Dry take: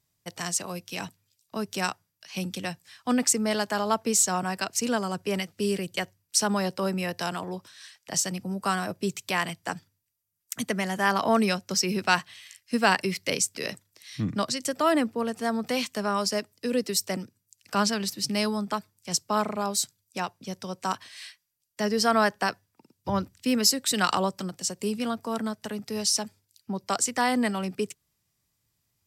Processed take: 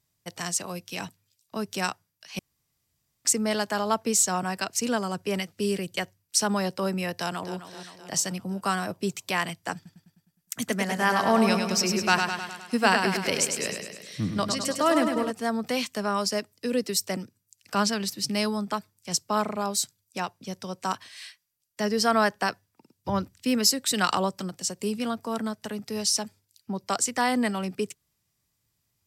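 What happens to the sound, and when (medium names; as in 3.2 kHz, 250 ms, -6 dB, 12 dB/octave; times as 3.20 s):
2.39–3.25 s: room tone
7.17–7.57 s: echo throw 260 ms, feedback 60%, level -11.5 dB
9.75–15.31 s: feedback delay 103 ms, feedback 59%, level -5.5 dB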